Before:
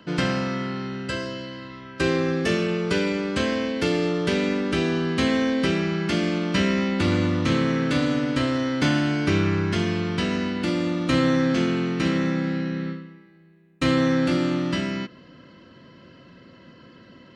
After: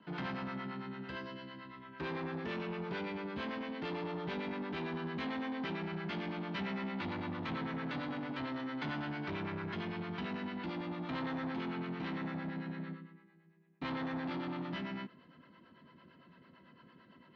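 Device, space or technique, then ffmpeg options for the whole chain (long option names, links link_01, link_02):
guitar amplifier with harmonic tremolo: -filter_complex "[0:a]acrossover=split=460[link_01][link_02];[link_01]aeval=exprs='val(0)*(1-0.7/2+0.7/2*cos(2*PI*8.9*n/s))':channel_layout=same[link_03];[link_02]aeval=exprs='val(0)*(1-0.7/2-0.7/2*cos(2*PI*8.9*n/s))':channel_layout=same[link_04];[link_03][link_04]amix=inputs=2:normalize=0,asoftclip=type=tanh:threshold=-26dB,highpass=92,equalizer=frequency=110:width_type=q:width=4:gain=-9,equalizer=frequency=310:width_type=q:width=4:gain=-4,equalizer=frequency=530:width_type=q:width=4:gain=-6,equalizer=frequency=910:width_type=q:width=4:gain=6,equalizer=frequency=2800:width_type=q:width=4:gain=-3,lowpass=frequency=3700:width=0.5412,lowpass=frequency=3700:width=1.3066,volume=-7dB"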